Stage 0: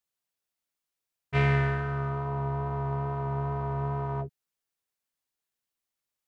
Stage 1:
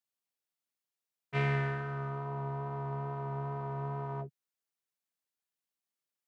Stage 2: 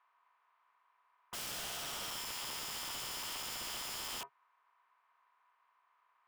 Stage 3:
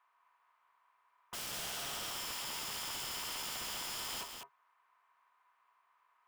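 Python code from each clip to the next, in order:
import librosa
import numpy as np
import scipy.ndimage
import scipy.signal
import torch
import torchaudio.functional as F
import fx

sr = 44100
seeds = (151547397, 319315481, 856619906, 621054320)

y1 = scipy.signal.sosfilt(scipy.signal.butter(4, 120.0, 'highpass', fs=sr, output='sos'), x)
y1 = y1 * 10.0 ** (-5.5 / 20.0)
y2 = fx.bin_compress(y1, sr, power=0.6)
y2 = fx.ladder_bandpass(y2, sr, hz=1100.0, resonance_pct=80)
y2 = (np.mod(10.0 ** (46.0 / 20.0) * y2 + 1.0, 2.0) - 1.0) / 10.0 ** (46.0 / 20.0)
y2 = y2 * 10.0 ** (8.5 / 20.0)
y3 = y2 + 10.0 ** (-6.0 / 20.0) * np.pad(y2, (int(201 * sr / 1000.0), 0))[:len(y2)]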